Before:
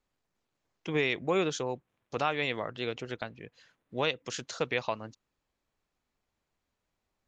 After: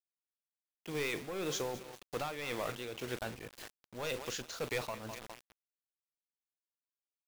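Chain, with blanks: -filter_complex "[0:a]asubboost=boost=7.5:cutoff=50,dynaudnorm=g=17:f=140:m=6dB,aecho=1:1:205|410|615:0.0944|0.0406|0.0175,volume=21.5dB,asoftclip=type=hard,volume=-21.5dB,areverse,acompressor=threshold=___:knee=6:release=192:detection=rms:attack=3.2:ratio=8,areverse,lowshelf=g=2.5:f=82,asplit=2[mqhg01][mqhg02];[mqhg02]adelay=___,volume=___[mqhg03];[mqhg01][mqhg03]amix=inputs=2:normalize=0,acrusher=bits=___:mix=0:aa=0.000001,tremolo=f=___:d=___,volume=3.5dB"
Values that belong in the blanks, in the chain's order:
-35dB, 41, -13.5dB, 7, 1.9, 0.58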